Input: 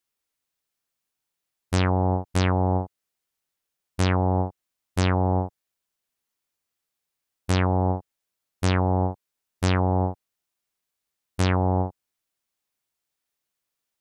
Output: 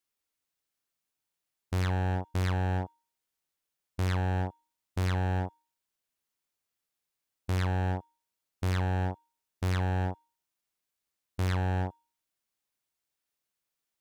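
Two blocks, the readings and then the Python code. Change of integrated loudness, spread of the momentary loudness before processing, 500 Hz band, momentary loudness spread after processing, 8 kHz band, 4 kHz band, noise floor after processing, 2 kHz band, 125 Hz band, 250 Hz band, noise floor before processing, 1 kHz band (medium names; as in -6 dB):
-7.0 dB, 11 LU, -10.5 dB, 11 LU, -10.0 dB, -8.5 dB, under -85 dBFS, -5.0 dB, -5.5 dB, -10.0 dB, -84 dBFS, -9.0 dB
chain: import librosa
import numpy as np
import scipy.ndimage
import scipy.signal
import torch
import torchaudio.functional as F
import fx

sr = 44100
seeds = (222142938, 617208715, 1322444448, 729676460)

y = fx.dynamic_eq(x, sr, hz=1800.0, q=1.6, threshold_db=-45.0, ratio=4.0, max_db=7)
y = np.clip(y, -10.0 ** (-22.0 / 20.0), 10.0 ** (-22.0 / 20.0))
y = fx.comb_fb(y, sr, f0_hz=310.0, decay_s=0.43, harmonics='odd', damping=0.0, mix_pct=50)
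y = y * librosa.db_to_amplitude(2.5)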